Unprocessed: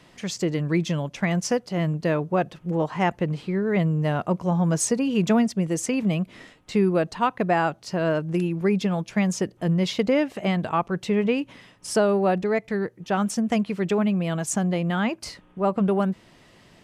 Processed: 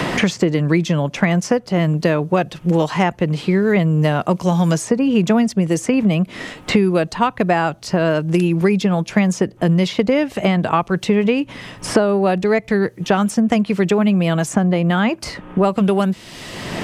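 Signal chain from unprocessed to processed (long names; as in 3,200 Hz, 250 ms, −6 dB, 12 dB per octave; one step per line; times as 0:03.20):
multiband upward and downward compressor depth 100%
level +6 dB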